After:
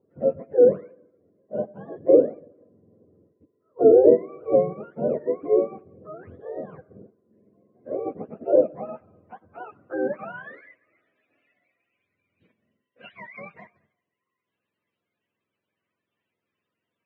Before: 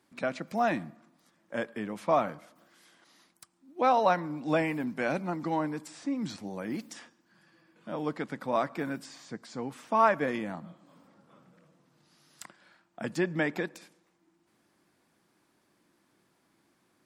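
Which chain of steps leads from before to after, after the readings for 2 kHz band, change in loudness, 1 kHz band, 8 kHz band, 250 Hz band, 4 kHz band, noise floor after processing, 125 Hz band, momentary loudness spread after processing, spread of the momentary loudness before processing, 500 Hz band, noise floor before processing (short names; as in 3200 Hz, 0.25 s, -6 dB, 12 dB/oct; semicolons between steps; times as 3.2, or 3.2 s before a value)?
-8.5 dB, +9.0 dB, -8.0 dB, under -30 dB, +3.0 dB, under -15 dB, -84 dBFS, -2.0 dB, 20 LU, 19 LU, +12.0 dB, -71 dBFS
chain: spectrum mirrored in octaves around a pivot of 590 Hz; band-pass sweep 460 Hz -> 2800 Hz, 8.25–11.28; resonant low shelf 750 Hz +9 dB, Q 1.5; gain +4 dB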